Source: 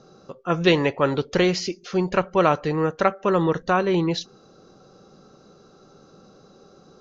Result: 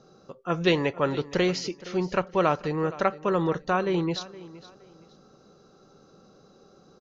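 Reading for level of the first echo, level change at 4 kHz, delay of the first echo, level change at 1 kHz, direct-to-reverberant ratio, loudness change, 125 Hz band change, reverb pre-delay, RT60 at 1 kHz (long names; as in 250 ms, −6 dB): −18.0 dB, −4.5 dB, 468 ms, −4.5 dB, no reverb audible, −4.5 dB, −4.5 dB, no reverb audible, no reverb audible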